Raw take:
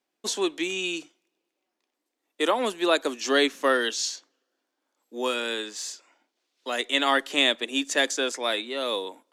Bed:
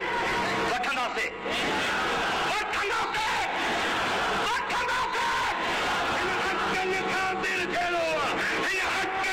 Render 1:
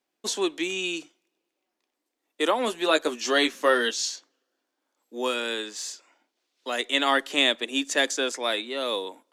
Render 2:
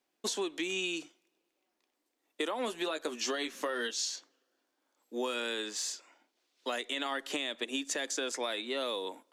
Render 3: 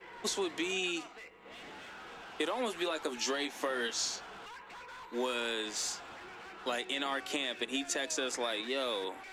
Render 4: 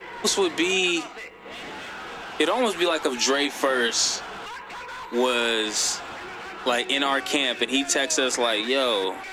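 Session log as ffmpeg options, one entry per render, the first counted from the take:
-filter_complex "[0:a]asettb=1/sr,asplit=3[a][b][c];[a]atrim=end=2.664[d];[b]atrim=start=2.66:end=3.91,asetpts=PTS-STARTPTS,afade=t=in:d=0.004:c=qsin,afade=t=out:st=1.246:d=0.004:c=qsin,asplit=2[e][f];[f]adelay=13,volume=-6dB[g];[e][g]amix=inputs=2:normalize=0,atrim=end_sample=55125[h];[c]atrim=start=3.906[i];[d][h]acrossfade=d=0.004:c1=hsin:c2=qsin[j];[j][i]acrossfade=d=0.004:c1=qsin:c2=hsin"
-af "alimiter=limit=-18dB:level=0:latency=1:release=158,acompressor=threshold=-31dB:ratio=6"
-filter_complex "[1:a]volume=-21.5dB[a];[0:a][a]amix=inputs=2:normalize=0"
-af "volume=12dB"

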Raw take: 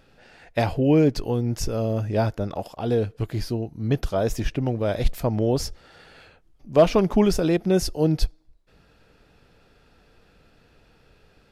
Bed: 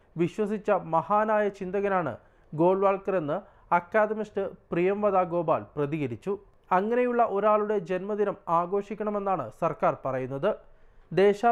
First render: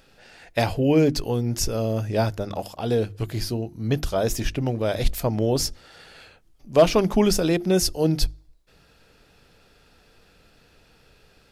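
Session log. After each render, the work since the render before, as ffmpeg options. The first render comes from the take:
-af "highshelf=f=3.3k:g=8.5,bandreject=f=50:t=h:w=6,bandreject=f=100:t=h:w=6,bandreject=f=150:t=h:w=6,bandreject=f=200:t=h:w=6,bandreject=f=250:t=h:w=6,bandreject=f=300:t=h:w=6,bandreject=f=350:t=h:w=6"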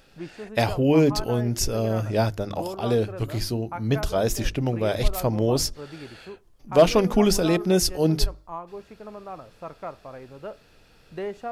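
-filter_complex "[1:a]volume=-11dB[a];[0:a][a]amix=inputs=2:normalize=0"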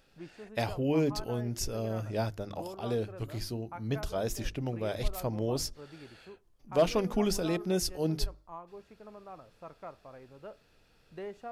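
-af "volume=-9.5dB"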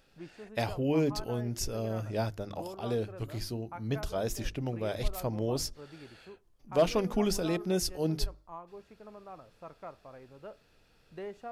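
-af anull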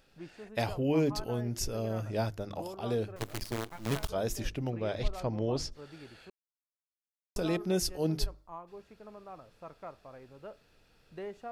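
-filter_complex "[0:a]asettb=1/sr,asplit=3[a][b][c];[a]atrim=end=3.164[d];[b]atrim=start=3.16:end=4.09,asetpts=PTS-STARTPTS,afade=t=in:d=0.004:c=qsin,afade=t=out:st=0.926:d=0.004:c=qsin,acrusher=bits=6:dc=4:mix=0:aa=0.000001[e];[c]atrim=start=4.086[f];[d][e]acrossfade=d=0.004:c1=hsin:c2=qsin[g];[g][f]acrossfade=d=0.004:c1=qsin:c2=hsin,asettb=1/sr,asplit=3[h][i][j];[h]atrim=end=4.704[k];[i]atrim=start=4.7:end=5.72,asetpts=PTS-STARTPTS,afade=t=in:d=0.004:c=qsin,afade=t=out:st=1.016:d=0.004:c=qsin,lowpass=5.4k[l];[j]atrim=start=5.716[m];[k][l]acrossfade=d=0.004:c1=hsin:c2=qsin[n];[n][m]acrossfade=d=0.004:c1=qsin:c2=hsin,asplit=3[o][p][q];[o]atrim=end=6.3,asetpts=PTS-STARTPTS,afade=t=out:st=6.296:d=0.004:c=hsin[r];[p]atrim=start=6.3:end=7.36,asetpts=PTS-STARTPTS,volume=0[s];[q]atrim=start=7.36,asetpts=PTS-STARTPTS,afade=t=in:d=0.004:c=hsin[t];[r][s][t]concat=n=3:v=0:a=1"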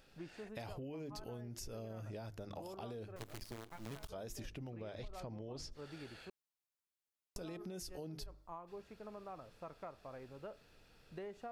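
-af "alimiter=level_in=4.5dB:limit=-24dB:level=0:latency=1:release=60,volume=-4.5dB,acompressor=threshold=-44dB:ratio=6"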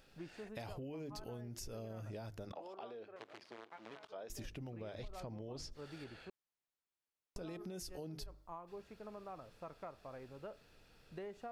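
-filter_complex "[0:a]asettb=1/sr,asplit=3[a][b][c];[a]atrim=end=2.524[d];[b]atrim=start=2.52:end=4.3,asetpts=PTS-STARTPTS,afade=t=in:d=0.004:c=qsin,afade=t=out:st=1.776:d=0.004:c=qsin,highpass=390,lowpass=3.3k[e];[c]atrim=start=4.296[f];[d][e]acrossfade=d=0.004:c1=hsin:c2=qsin[g];[g][f]acrossfade=d=0.004:c1=qsin:c2=hsin,asettb=1/sr,asplit=3[h][i][j];[h]atrim=end=6.044[k];[i]atrim=start=6.04:end=7.49,asetpts=PTS-STARTPTS,afade=t=in:d=0.004:c=qsin,afade=t=out:st=1.446:d=0.004:c=qsin,aemphasis=mode=reproduction:type=cd[l];[j]atrim=start=7.486[m];[k][l]acrossfade=d=0.004:c1=hsin:c2=qsin[n];[n][m]acrossfade=d=0.004:c1=qsin:c2=hsin"

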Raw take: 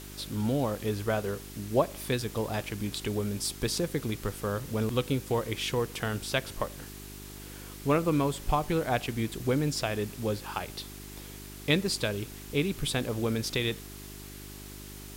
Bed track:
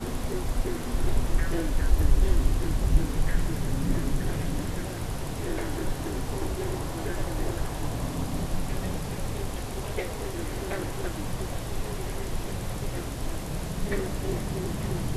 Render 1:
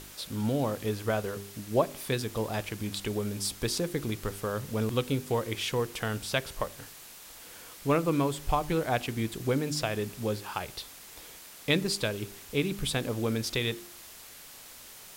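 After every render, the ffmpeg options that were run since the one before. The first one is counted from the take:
-af "bandreject=f=50:t=h:w=4,bandreject=f=100:t=h:w=4,bandreject=f=150:t=h:w=4,bandreject=f=200:t=h:w=4,bandreject=f=250:t=h:w=4,bandreject=f=300:t=h:w=4,bandreject=f=350:t=h:w=4,bandreject=f=400:t=h:w=4"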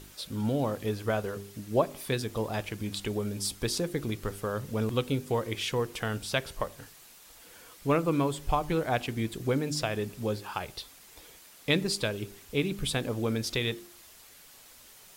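-af "afftdn=nr=6:nf=-49"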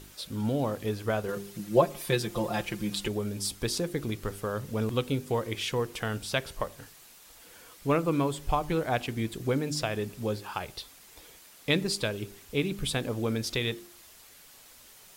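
-filter_complex "[0:a]asettb=1/sr,asplit=3[a][b][c];[a]atrim=end=1.284[d];[b]atrim=start=1.28:end=3.08,asetpts=PTS-STARTPTS,afade=t=in:d=0.004:c=qsin,afade=t=out:st=1.796:d=0.004:c=qsin,aecho=1:1:5.7:0.99,atrim=end_sample=79380[e];[c]atrim=start=3.076[f];[d][e]acrossfade=d=0.004:c1=hsin:c2=qsin[g];[g][f]acrossfade=d=0.004:c1=qsin:c2=hsin"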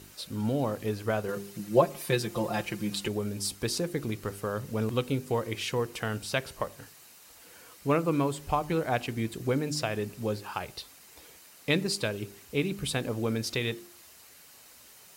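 -af "highpass=62,bandreject=f=3.4k:w=13"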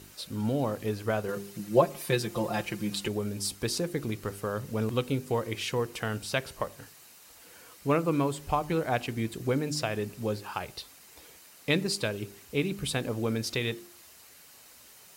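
-af anull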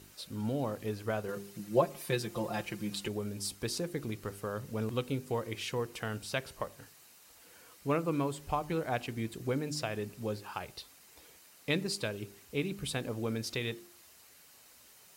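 -af "volume=-5dB"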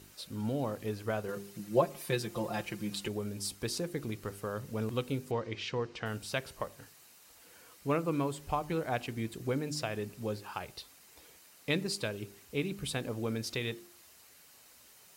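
-filter_complex "[0:a]asettb=1/sr,asplit=3[a][b][c];[a]atrim=end=5.314[d];[b]atrim=start=5.31:end=6.06,asetpts=PTS-STARTPTS,afade=t=in:d=0.004:c=qsin,afade=t=out:st=0.746:d=0.004:c=qsin,lowpass=f=5.6k:w=0.5412,lowpass=f=5.6k:w=1.3066[e];[c]atrim=start=6.056[f];[d][e]acrossfade=d=0.004:c1=hsin:c2=qsin[g];[g][f]acrossfade=d=0.004:c1=qsin:c2=hsin"

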